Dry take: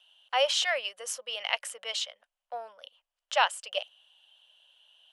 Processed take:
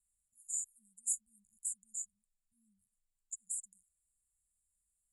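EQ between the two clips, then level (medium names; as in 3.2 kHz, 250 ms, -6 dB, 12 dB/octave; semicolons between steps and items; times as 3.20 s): brick-wall FIR band-stop 210–6800 Hz; distance through air 59 m; +10.0 dB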